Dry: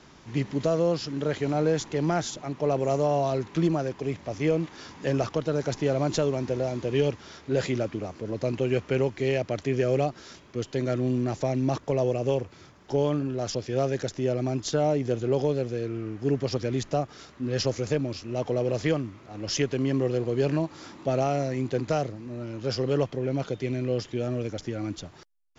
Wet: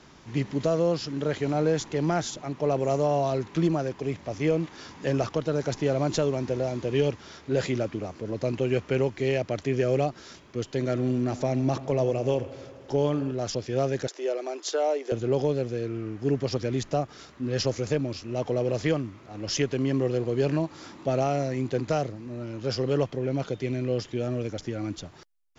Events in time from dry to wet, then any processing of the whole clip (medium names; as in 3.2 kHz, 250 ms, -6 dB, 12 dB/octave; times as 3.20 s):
10.71–13.32 s: bucket-brigade echo 84 ms, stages 2048, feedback 78%, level -17.5 dB
14.07–15.12 s: steep high-pass 360 Hz